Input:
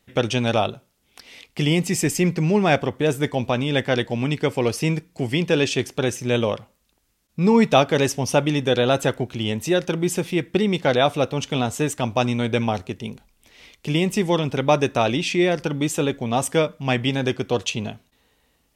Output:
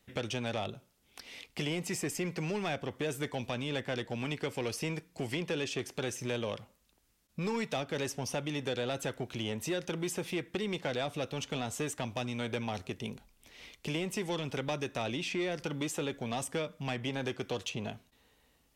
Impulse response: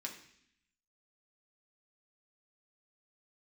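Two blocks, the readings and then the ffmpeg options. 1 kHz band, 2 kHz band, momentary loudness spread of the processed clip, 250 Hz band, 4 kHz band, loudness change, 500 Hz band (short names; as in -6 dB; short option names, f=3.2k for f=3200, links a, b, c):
-15.5 dB, -12.0 dB, 6 LU, -15.0 dB, -12.0 dB, -14.5 dB, -15.0 dB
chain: -filter_complex "[0:a]acrossover=split=420|1800[a][b][c];[a]acompressor=threshold=-33dB:ratio=4[d];[b]acompressor=threshold=-32dB:ratio=4[e];[c]acompressor=threshold=-34dB:ratio=4[f];[d][e][f]amix=inputs=3:normalize=0,asoftclip=type=tanh:threshold=-21.5dB,volume=-4dB"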